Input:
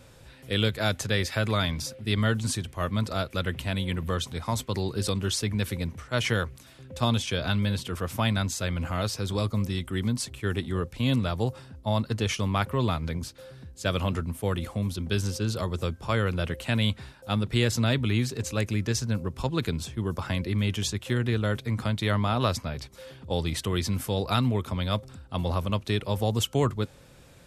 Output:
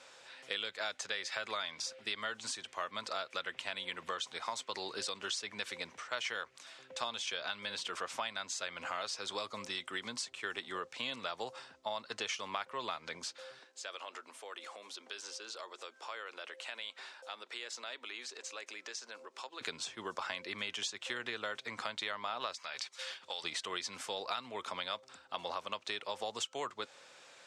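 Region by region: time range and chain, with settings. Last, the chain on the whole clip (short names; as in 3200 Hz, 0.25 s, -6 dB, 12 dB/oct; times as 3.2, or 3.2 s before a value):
13.59–19.61 HPF 300 Hz 24 dB/oct + compressor 3:1, threshold -44 dBFS
22.54–23.44 gate -48 dBFS, range -8 dB + tilt shelf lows -8.5 dB, about 800 Hz + compressor, threshold -34 dBFS
whole clip: HPF 750 Hz 12 dB/oct; compressor 6:1, threshold -37 dBFS; LPF 7700 Hz 24 dB/oct; gain +2 dB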